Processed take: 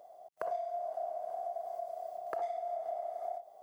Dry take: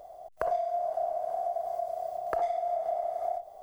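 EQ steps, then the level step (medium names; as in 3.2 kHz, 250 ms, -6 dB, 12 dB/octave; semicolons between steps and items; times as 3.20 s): high-pass 190 Hz 12 dB/octave; -7.0 dB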